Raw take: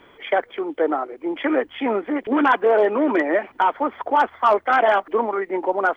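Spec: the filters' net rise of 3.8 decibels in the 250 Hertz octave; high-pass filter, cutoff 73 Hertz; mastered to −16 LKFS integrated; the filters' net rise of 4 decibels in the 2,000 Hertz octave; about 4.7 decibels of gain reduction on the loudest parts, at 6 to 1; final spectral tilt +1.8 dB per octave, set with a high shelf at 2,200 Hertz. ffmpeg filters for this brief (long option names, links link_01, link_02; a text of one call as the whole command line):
ffmpeg -i in.wav -af "highpass=73,equalizer=frequency=250:width_type=o:gain=5,equalizer=frequency=2000:width_type=o:gain=9,highshelf=frequency=2200:gain=-7,acompressor=threshold=-16dB:ratio=6,volume=6dB" out.wav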